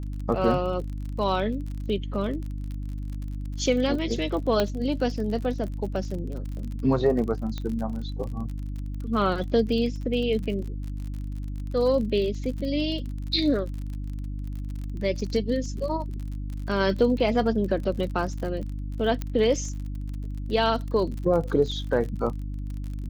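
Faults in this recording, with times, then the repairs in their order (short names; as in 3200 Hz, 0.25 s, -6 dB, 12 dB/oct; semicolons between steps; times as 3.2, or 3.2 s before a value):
crackle 41/s -33 dBFS
hum 50 Hz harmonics 6 -32 dBFS
4.6 pop -10 dBFS
7.58 pop -19 dBFS
19.22 pop -16 dBFS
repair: de-click; de-hum 50 Hz, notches 6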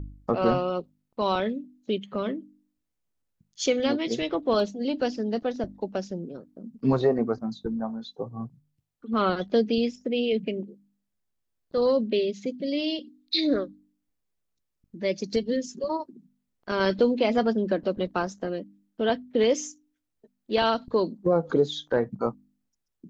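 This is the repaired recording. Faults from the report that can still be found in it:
4.6 pop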